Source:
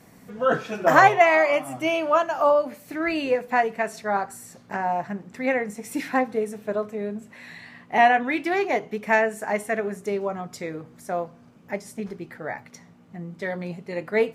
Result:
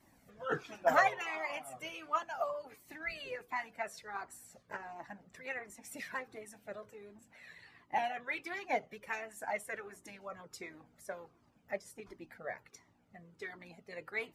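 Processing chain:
harmonic and percussive parts rebalanced harmonic −15 dB
flanger whose copies keep moving one way falling 1.4 Hz
level −4 dB

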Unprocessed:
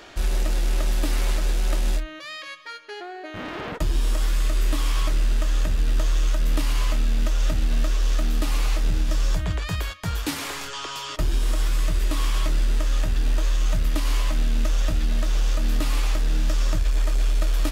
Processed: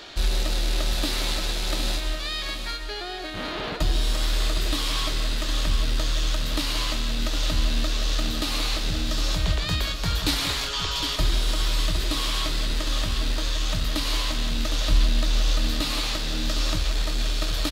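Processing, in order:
parametric band 4,000 Hz +11 dB 0.71 octaves
repeating echo 760 ms, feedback 37%, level −8 dB
on a send at −10 dB: convolution reverb RT60 0.40 s, pre-delay 120 ms

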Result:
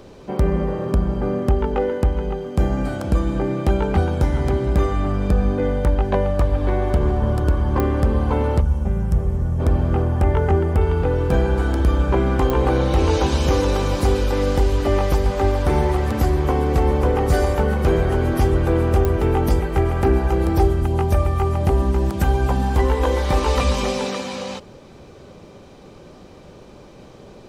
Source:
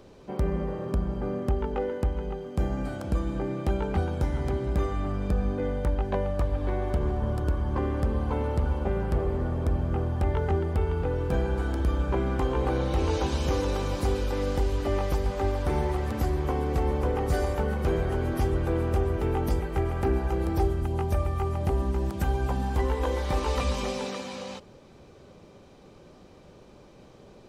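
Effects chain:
0:08.61–0:09.60: gain on a spectral selection 220–5,200 Hz −11 dB
0:10.02–0:10.81: parametric band 4,000 Hz −6 dB 0.69 octaves
digital clicks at 0:07.80/0:12.50/0:19.05, −17 dBFS
level +8.5 dB

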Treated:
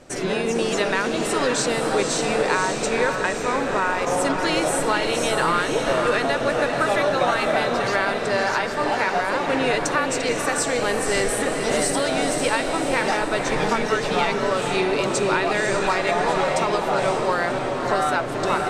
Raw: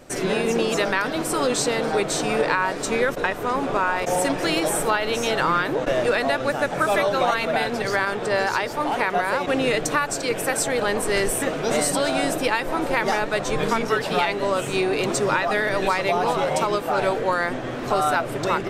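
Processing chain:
Chebyshev low-pass filter 8,100 Hz, order 2
feedback delay with all-pass diffusion 540 ms, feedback 43%, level −4 dB

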